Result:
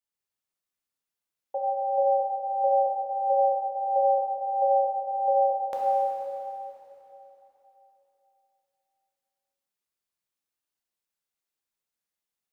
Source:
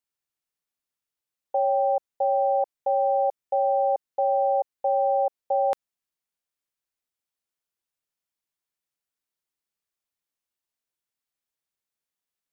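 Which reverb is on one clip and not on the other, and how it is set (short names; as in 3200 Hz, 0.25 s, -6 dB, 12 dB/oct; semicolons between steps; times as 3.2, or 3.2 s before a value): plate-style reverb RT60 3.4 s, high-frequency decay 0.95×, DRR -4.5 dB; gain -6 dB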